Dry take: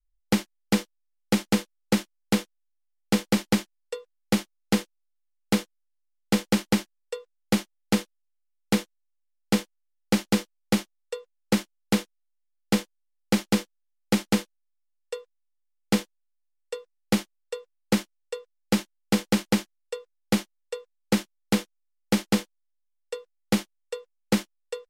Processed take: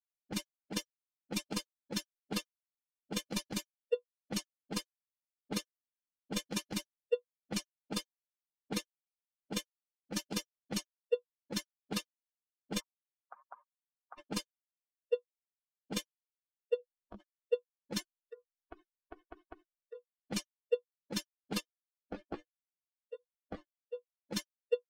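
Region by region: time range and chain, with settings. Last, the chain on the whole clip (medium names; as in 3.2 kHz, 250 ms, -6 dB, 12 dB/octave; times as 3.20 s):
12.80–14.18 s: send-on-delta sampling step -33.5 dBFS + compression 20:1, threshold -22 dBFS + band-pass filter 1.1 kHz, Q 1.8
16.76–17.20 s: peaking EQ 1.9 kHz -8.5 dB 0.82 oct + compression 10:1, threshold -32 dBFS + doubling 20 ms -2 dB
18.00–19.95 s: treble shelf 2.9 kHz -4 dB + comb 2.7 ms, depth 76% + compression 16:1, threshold -32 dBFS
21.60–23.95 s: compression 4:1, threshold -21 dBFS + chorus 1.2 Hz, delay 16.5 ms, depth 6.6 ms
whole clip: expander on every frequency bin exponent 3; level-controlled noise filter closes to 1.4 kHz, open at -22 dBFS; compressor with a negative ratio -31 dBFS, ratio -0.5; trim +1.5 dB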